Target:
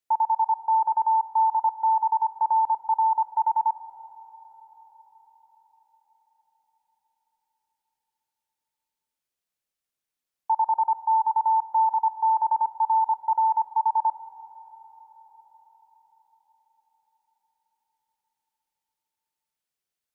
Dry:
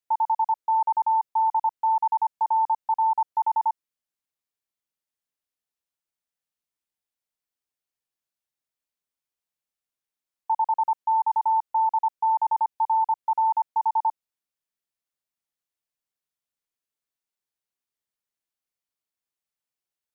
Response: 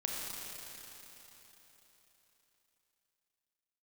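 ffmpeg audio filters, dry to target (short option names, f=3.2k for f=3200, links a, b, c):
-filter_complex "[0:a]asplit=2[a][b];[b]equalizer=f=1k:w=3.5:g=-7[c];[1:a]atrim=start_sample=2205,asetrate=29988,aresample=44100[d];[c][d]afir=irnorm=-1:irlink=0,volume=-13dB[e];[a][e]amix=inputs=2:normalize=0"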